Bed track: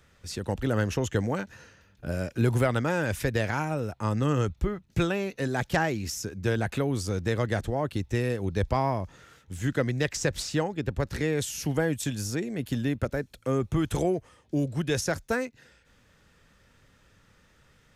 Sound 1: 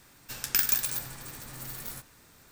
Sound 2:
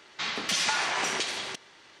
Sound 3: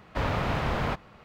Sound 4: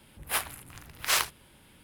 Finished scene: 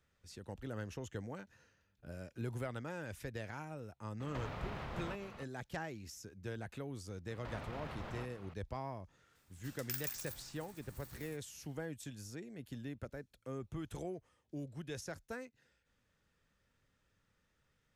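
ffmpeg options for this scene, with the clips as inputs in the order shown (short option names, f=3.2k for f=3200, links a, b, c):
-filter_complex "[3:a]asplit=2[a][b];[0:a]volume=-17dB[c];[a]acompressor=threshold=-41dB:ratio=6:attack=3.2:release=140:knee=1:detection=peak[d];[b]acompressor=threshold=-36dB:ratio=6:attack=0.21:release=74:knee=1:detection=peak[e];[d]atrim=end=1.24,asetpts=PTS-STARTPTS,volume=-0.5dB,afade=t=in:d=0.004:c=hsin,afade=t=out:st=1.236:d=0.004:c=hsin,adelay=4200[f];[e]atrim=end=1.24,asetpts=PTS-STARTPTS,volume=-5.5dB,afade=t=in:d=0.004:c=hsin,afade=t=out:st=1.236:d=0.004:c=hsin,adelay=321930S[g];[1:a]atrim=end=2.51,asetpts=PTS-STARTPTS,volume=-16.5dB,afade=t=in:d=0.004:c=hsin,afade=t=out:st=2.506:d=0.004:c=hsin,adelay=9350[h];[c][f][g][h]amix=inputs=4:normalize=0"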